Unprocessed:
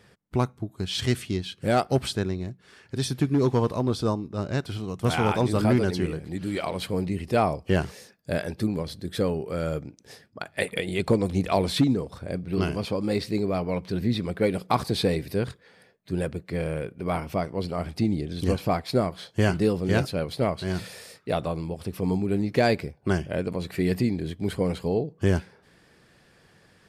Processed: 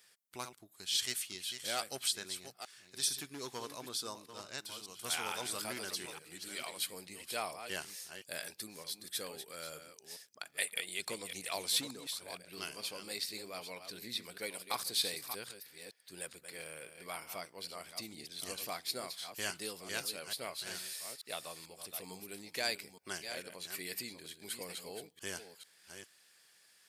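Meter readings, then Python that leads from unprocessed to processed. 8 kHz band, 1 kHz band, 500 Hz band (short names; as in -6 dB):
+3.5 dB, -15.0 dB, -20.0 dB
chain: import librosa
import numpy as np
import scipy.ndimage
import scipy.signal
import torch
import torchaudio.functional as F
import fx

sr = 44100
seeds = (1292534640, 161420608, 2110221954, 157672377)

y = fx.reverse_delay(x, sr, ms=442, wet_db=-9)
y = np.diff(y, prepend=0.0)
y = y * librosa.db_to_amplitude(2.5)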